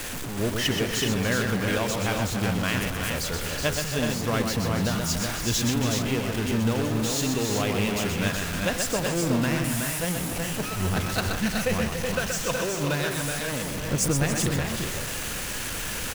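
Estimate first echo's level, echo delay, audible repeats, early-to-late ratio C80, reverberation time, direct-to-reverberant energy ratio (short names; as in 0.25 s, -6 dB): -5.5 dB, 0.125 s, 4, none, none, none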